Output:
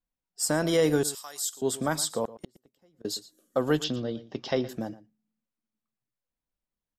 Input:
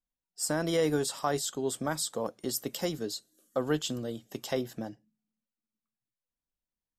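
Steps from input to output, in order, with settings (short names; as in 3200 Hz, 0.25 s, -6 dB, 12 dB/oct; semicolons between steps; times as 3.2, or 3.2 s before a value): 1.03–1.62 differentiator; 2.25–3.05 flipped gate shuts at -26 dBFS, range -35 dB; 3.84–4.69 steep low-pass 5600 Hz 48 dB/oct; outdoor echo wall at 20 m, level -17 dB; mismatched tape noise reduction decoder only; gain +4 dB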